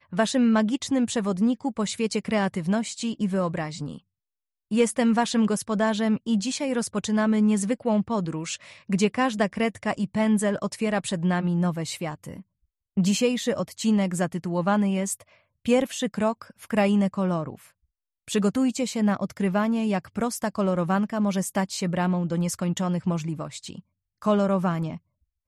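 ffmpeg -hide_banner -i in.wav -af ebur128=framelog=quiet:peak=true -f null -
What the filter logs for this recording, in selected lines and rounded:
Integrated loudness:
  I:         -25.2 LUFS
  Threshold: -35.5 LUFS
Loudness range:
  LRA:         2.2 LU
  Threshold: -45.7 LUFS
  LRA low:   -26.8 LUFS
  LRA high:  -24.5 LUFS
True peak:
  Peak:      -10.3 dBFS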